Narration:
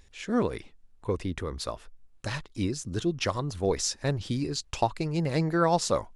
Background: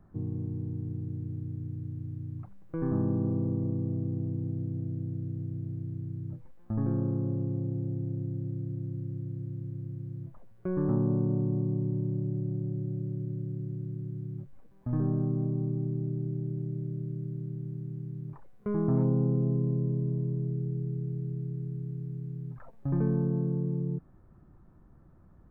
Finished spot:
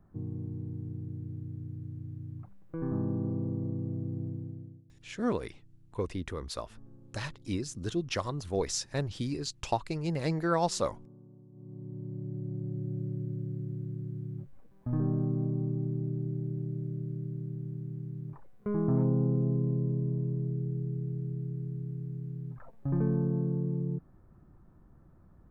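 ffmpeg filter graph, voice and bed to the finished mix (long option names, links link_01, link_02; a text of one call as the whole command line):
ffmpeg -i stem1.wav -i stem2.wav -filter_complex "[0:a]adelay=4900,volume=-4dB[link_01];[1:a]volume=22dB,afade=type=out:start_time=4.25:duration=0.58:silence=0.0707946,afade=type=in:start_time=11.52:duration=1.49:silence=0.0530884[link_02];[link_01][link_02]amix=inputs=2:normalize=0" out.wav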